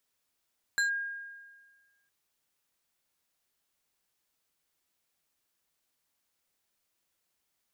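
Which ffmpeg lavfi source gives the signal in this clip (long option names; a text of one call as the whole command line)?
ffmpeg -f lavfi -i "aevalsrc='0.0708*pow(10,-3*t/1.51)*sin(2*PI*1620*t+0.64*clip(1-t/0.12,0,1)*sin(2*PI*3.53*1620*t))':duration=1.31:sample_rate=44100" out.wav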